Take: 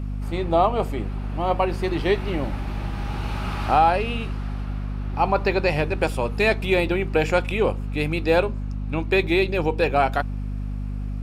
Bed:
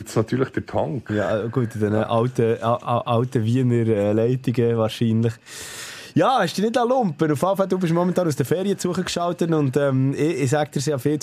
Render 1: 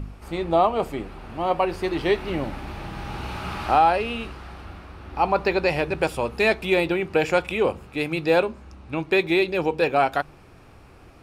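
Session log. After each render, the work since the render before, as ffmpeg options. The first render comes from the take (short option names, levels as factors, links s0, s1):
-af "bandreject=f=50:t=h:w=4,bandreject=f=100:t=h:w=4,bandreject=f=150:t=h:w=4,bandreject=f=200:t=h:w=4,bandreject=f=250:t=h:w=4"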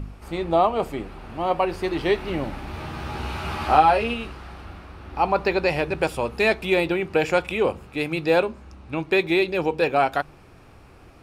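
-filter_complex "[0:a]asettb=1/sr,asplit=3[s0][s1][s2];[s0]atrim=end=2.724[s3];[s1]atrim=start=2.72:end=4.14,asetpts=PTS-STARTPTS,afade=t=in:d=0.004:c=qsin,afade=t=out:st=1.416:d=0.004:c=qsin,asplit=2[s4][s5];[s5]adelay=13,volume=0.708[s6];[s4][s6]amix=inputs=2:normalize=0,atrim=end_sample=62622[s7];[s2]atrim=start=4.136[s8];[s3][s7]acrossfade=d=0.004:c1=hsin:c2=qsin[s9];[s9][s8]acrossfade=d=0.004:c1=qsin:c2=hsin"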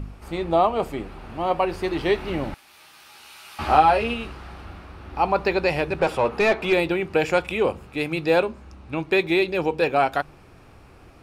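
-filter_complex "[0:a]asettb=1/sr,asplit=3[s0][s1][s2];[s0]atrim=end=2.544[s3];[s1]atrim=start=2.54:end=3.59,asetpts=PTS-STARTPTS,afade=t=in:d=0.004:c=qsin,afade=t=out:st=1.046:d=0.004:c=qsin,aderivative[s4];[s2]atrim=start=3.586[s5];[s3][s4]acrossfade=d=0.004:c1=hsin:c2=qsin[s6];[s6][s5]acrossfade=d=0.004:c1=qsin:c2=hsin,asettb=1/sr,asplit=3[s7][s8][s9];[s7]atrim=end=5.994[s10];[s8]atrim=start=5.99:end=6.73,asetpts=PTS-STARTPTS,afade=t=in:d=0.004:c=qsin,afade=t=out:st=0.736:d=0.004:c=qsin,asplit=2[s11][s12];[s12]highpass=f=720:p=1,volume=7.94,asoftclip=type=tanh:threshold=0.398[s13];[s11][s13]amix=inputs=2:normalize=0,lowpass=f=1100:p=1,volume=0.501[s14];[s9]atrim=start=6.726[s15];[s10][s14]acrossfade=d=0.004:c1=hsin:c2=qsin[s16];[s16][s15]acrossfade=d=0.004:c1=qsin:c2=hsin"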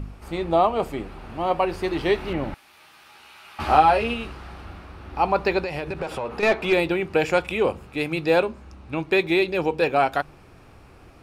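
-filter_complex "[0:a]asettb=1/sr,asplit=3[s0][s1][s2];[s0]atrim=end=2.334[s3];[s1]atrim=start=2.33:end=3.6,asetpts=PTS-STARTPTS,afade=t=in:d=0.004:c=qsin,afade=t=out:st=1.266:d=0.004:c=qsin,acrossover=split=3300[s4][s5];[s5]acompressor=threshold=0.00141:ratio=4:attack=1:release=60[s6];[s4][s6]amix=inputs=2:normalize=0[s7];[s2]atrim=start=3.596[s8];[s3][s7]acrossfade=d=0.004:c1=hsin:c2=qsin[s9];[s9][s8]acrossfade=d=0.004:c1=qsin:c2=hsin,asettb=1/sr,asplit=3[s10][s11][s12];[s10]atrim=end=5.604[s13];[s11]atrim=start=5.6:end=6.43,asetpts=PTS-STARTPTS,afade=t=in:d=0.004:c=qsin,afade=t=out:st=0.826:d=0.004:c=qsin,acompressor=threshold=0.0631:ratio=10:attack=3.2:release=140:knee=1:detection=peak[s14];[s12]atrim=start=6.426[s15];[s13][s14]acrossfade=d=0.004:c1=hsin:c2=qsin[s16];[s16][s15]acrossfade=d=0.004:c1=qsin:c2=hsin"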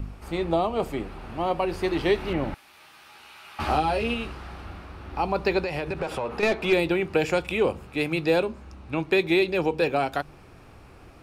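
-filter_complex "[0:a]acrossover=split=450|3000[s0][s1][s2];[s1]acompressor=threshold=0.0562:ratio=6[s3];[s0][s3][s2]amix=inputs=3:normalize=0"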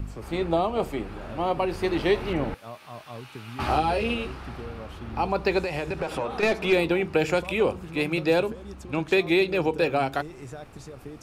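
-filter_complex "[1:a]volume=0.0944[s0];[0:a][s0]amix=inputs=2:normalize=0"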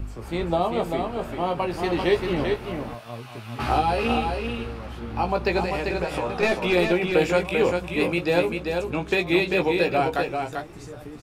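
-filter_complex "[0:a]asplit=2[s0][s1];[s1]adelay=17,volume=0.501[s2];[s0][s2]amix=inputs=2:normalize=0,asplit=2[s3][s4];[s4]aecho=0:1:392:0.562[s5];[s3][s5]amix=inputs=2:normalize=0"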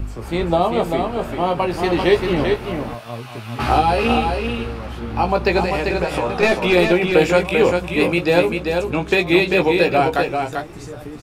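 -af "volume=2"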